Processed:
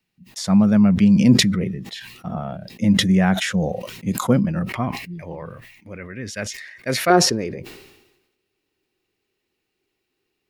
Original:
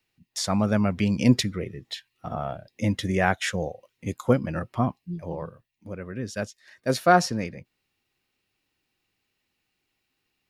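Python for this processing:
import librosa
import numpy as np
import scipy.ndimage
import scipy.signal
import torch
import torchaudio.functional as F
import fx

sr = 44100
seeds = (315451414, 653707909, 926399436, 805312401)

y = fx.peak_eq(x, sr, hz=fx.steps((0.0, 190.0), (4.69, 2100.0), (7.1, 390.0)), db=13.5, octaves=0.6)
y = fx.sustainer(y, sr, db_per_s=55.0)
y = y * librosa.db_to_amplitude(-1.0)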